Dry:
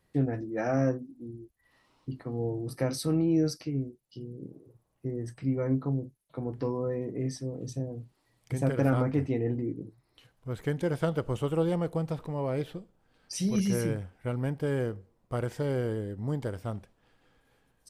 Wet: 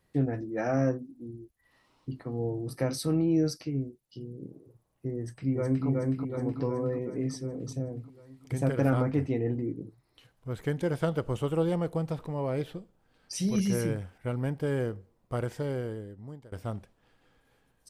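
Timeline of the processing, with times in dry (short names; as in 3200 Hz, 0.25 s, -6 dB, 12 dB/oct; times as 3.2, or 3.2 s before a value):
5.18–5.87 echo throw 0.37 s, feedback 65%, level -1.5 dB
13.48–14.18 mismatched tape noise reduction encoder only
15.4–16.52 fade out, to -23 dB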